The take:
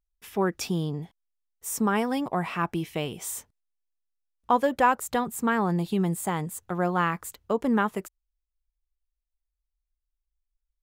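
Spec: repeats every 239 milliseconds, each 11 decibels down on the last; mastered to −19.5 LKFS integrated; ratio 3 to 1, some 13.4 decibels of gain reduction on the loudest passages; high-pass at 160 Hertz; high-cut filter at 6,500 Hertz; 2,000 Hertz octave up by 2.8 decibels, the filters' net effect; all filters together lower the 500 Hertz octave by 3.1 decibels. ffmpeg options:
ffmpeg -i in.wav -af "highpass=160,lowpass=6500,equalizer=frequency=500:width_type=o:gain=-4,equalizer=frequency=2000:width_type=o:gain=4,acompressor=threshold=-35dB:ratio=3,aecho=1:1:239|478|717:0.282|0.0789|0.0221,volume=18dB" out.wav

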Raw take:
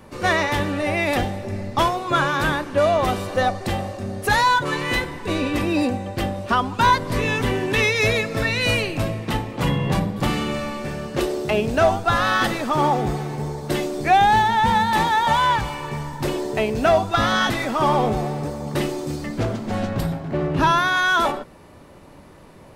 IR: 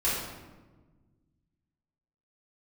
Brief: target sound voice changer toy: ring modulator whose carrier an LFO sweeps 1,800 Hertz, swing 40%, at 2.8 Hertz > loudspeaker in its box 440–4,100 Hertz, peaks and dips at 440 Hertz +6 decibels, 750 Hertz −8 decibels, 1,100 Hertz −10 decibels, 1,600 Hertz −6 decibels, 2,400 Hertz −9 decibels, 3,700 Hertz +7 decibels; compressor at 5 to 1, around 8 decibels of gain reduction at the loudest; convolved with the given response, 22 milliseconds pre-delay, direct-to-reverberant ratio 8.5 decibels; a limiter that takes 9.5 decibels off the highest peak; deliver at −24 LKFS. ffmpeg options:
-filter_complex "[0:a]acompressor=threshold=-21dB:ratio=5,alimiter=limit=-20dB:level=0:latency=1,asplit=2[link_01][link_02];[1:a]atrim=start_sample=2205,adelay=22[link_03];[link_02][link_03]afir=irnorm=-1:irlink=0,volume=-19dB[link_04];[link_01][link_04]amix=inputs=2:normalize=0,aeval=exprs='val(0)*sin(2*PI*1800*n/s+1800*0.4/2.8*sin(2*PI*2.8*n/s))':channel_layout=same,highpass=440,equalizer=frequency=440:width_type=q:width=4:gain=6,equalizer=frequency=750:width_type=q:width=4:gain=-8,equalizer=frequency=1100:width_type=q:width=4:gain=-10,equalizer=frequency=1600:width_type=q:width=4:gain=-6,equalizer=frequency=2400:width_type=q:width=4:gain=-9,equalizer=frequency=3700:width_type=q:width=4:gain=7,lowpass=frequency=4100:width=0.5412,lowpass=frequency=4100:width=1.3066,volume=8.5dB"

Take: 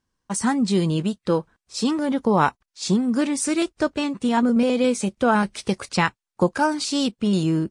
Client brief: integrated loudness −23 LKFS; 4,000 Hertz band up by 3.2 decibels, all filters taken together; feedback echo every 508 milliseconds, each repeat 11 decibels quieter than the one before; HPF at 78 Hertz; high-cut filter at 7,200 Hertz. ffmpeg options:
ffmpeg -i in.wav -af "highpass=78,lowpass=7200,equalizer=frequency=4000:width_type=o:gain=4.5,aecho=1:1:508|1016|1524:0.282|0.0789|0.0221,volume=-1dB" out.wav

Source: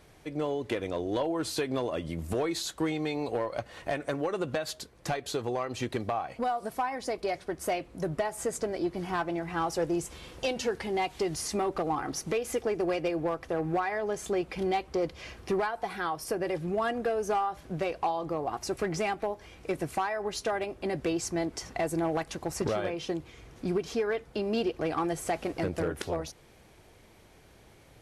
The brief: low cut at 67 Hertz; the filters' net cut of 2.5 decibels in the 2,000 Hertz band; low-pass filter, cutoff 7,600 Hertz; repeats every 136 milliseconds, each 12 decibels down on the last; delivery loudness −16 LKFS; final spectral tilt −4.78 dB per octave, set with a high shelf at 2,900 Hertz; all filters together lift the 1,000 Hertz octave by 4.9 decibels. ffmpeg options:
ffmpeg -i in.wav -af "highpass=67,lowpass=7600,equalizer=frequency=1000:width_type=o:gain=8,equalizer=frequency=2000:width_type=o:gain=-7.5,highshelf=frequency=2900:gain=3.5,aecho=1:1:136|272|408:0.251|0.0628|0.0157,volume=13.5dB" out.wav

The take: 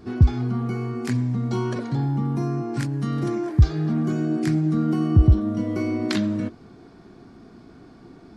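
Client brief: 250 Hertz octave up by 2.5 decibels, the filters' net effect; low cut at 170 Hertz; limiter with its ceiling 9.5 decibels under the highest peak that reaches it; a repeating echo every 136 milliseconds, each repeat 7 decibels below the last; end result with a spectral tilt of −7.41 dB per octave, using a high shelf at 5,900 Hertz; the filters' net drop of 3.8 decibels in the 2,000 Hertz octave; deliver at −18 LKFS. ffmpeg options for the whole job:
ffmpeg -i in.wav -af "highpass=170,equalizer=frequency=250:width_type=o:gain=4.5,equalizer=frequency=2000:width_type=o:gain=-4.5,highshelf=frequency=5900:gain=-5,alimiter=limit=-17dB:level=0:latency=1,aecho=1:1:136|272|408|544|680:0.447|0.201|0.0905|0.0407|0.0183,volume=7.5dB" out.wav

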